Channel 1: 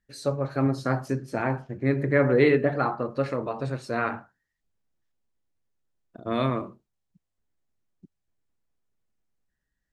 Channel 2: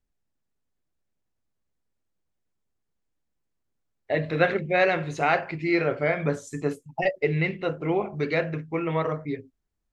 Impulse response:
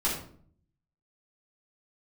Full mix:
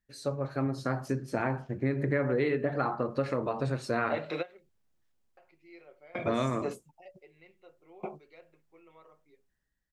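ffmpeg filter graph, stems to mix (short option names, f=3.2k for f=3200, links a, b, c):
-filter_complex "[0:a]dynaudnorm=f=720:g=3:m=8.5dB,volume=-5dB,asplit=2[a][b];[1:a]highpass=390,equalizer=f=1.7k:w=2.6:g=-8,aecho=1:1:5.5:0.43,volume=-1dB,asplit=3[c][d][e];[c]atrim=end=4.69,asetpts=PTS-STARTPTS,afade=t=out:st=4.686:d=0.004:c=hsin[f];[d]atrim=start=4.69:end=5.37,asetpts=PTS-STARTPTS,volume=0[g];[e]atrim=start=5.37,asetpts=PTS-STARTPTS,afade=t=in:d=0.004:c=hsin[h];[f][g][h]concat=n=3:v=0:a=1[i];[b]apad=whole_len=438050[j];[i][j]sidechaingate=range=-27dB:threshold=-59dB:ratio=16:detection=peak[k];[a][k]amix=inputs=2:normalize=0,acompressor=threshold=-25dB:ratio=6"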